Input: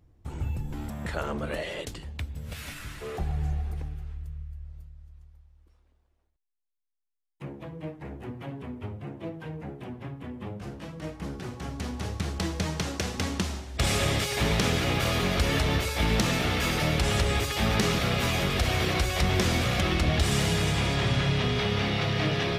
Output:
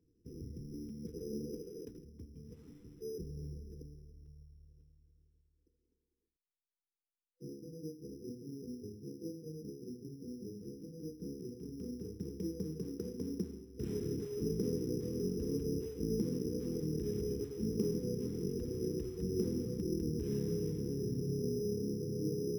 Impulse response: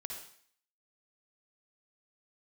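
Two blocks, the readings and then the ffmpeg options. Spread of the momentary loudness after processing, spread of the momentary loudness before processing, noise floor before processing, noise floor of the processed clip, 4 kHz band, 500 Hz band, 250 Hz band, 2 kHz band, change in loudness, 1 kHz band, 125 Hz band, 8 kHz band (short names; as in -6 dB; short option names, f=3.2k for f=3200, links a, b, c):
14 LU, 15 LU, -75 dBFS, under -85 dBFS, -25.5 dB, -6.5 dB, -6.5 dB, under -35 dB, -12.0 dB, under -35 dB, -13.0 dB, -16.5 dB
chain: -filter_complex "[0:a]afftfilt=real='re*(1-between(b*sr/4096,500,5100))':imag='im*(1-between(b*sr/4096,500,5100))':win_size=4096:overlap=0.75,acrossover=split=170 2100:gain=0.158 1 0.0631[a][b][c];[a][b][c]amix=inputs=3:normalize=0,acrusher=samples=8:mix=1:aa=0.000001,volume=-4dB"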